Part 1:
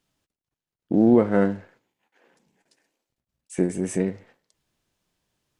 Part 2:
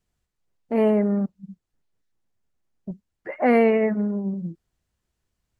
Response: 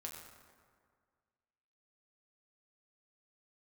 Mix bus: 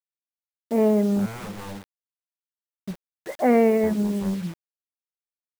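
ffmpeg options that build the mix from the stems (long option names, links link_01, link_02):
-filter_complex "[0:a]aeval=exprs='0.0794*(abs(mod(val(0)/0.0794+3,4)-2)-1)':channel_layout=same,adelay=250,volume=-8dB[link_01];[1:a]adynamicequalizer=threshold=0.0282:dfrequency=550:dqfactor=3:tfrequency=550:tqfactor=3:attack=5:release=100:ratio=0.375:range=1.5:mode=cutabove:tftype=bell,volume=0.5dB[link_02];[link_01][link_02]amix=inputs=2:normalize=0,highshelf=frequency=2200:gain=-11.5,acrusher=bits=6:mix=0:aa=0.000001"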